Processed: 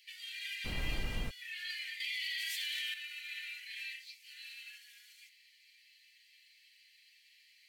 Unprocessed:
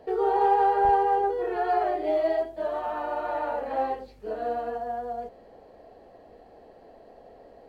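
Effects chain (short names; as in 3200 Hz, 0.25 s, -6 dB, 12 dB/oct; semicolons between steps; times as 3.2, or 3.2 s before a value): steep high-pass 2100 Hz 72 dB/oct; FDN reverb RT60 0.31 s, high-frequency decay 0.4×, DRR -2.5 dB; 0.64–1.29 added noise brown -43 dBFS; 2–2.94 fast leveller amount 100%; gain +8.5 dB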